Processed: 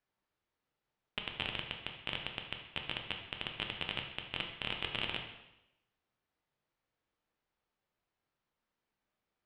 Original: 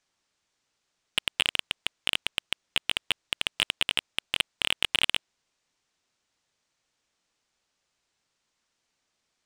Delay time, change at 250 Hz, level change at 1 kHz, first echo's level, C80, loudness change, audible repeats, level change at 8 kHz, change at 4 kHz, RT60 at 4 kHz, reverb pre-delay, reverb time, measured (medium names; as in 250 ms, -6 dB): no echo, -1.5 dB, -5.5 dB, no echo, 8.0 dB, -11.5 dB, no echo, under -30 dB, -12.0 dB, 0.85 s, 5 ms, 0.90 s